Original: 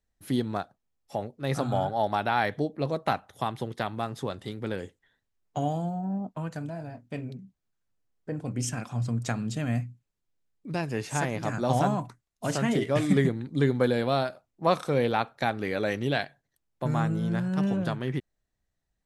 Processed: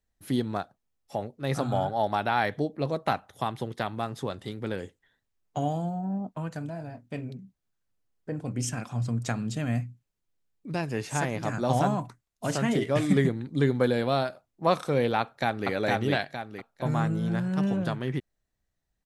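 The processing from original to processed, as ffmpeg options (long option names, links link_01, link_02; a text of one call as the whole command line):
ffmpeg -i in.wav -filter_complex "[0:a]asplit=2[link_01][link_02];[link_02]afade=type=in:start_time=15.2:duration=0.01,afade=type=out:start_time=15.69:duration=0.01,aecho=0:1:460|920|1380|1840|2300:0.891251|0.3565|0.1426|0.0570401|0.022816[link_03];[link_01][link_03]amix=inputs=2:normalize=0" out.wav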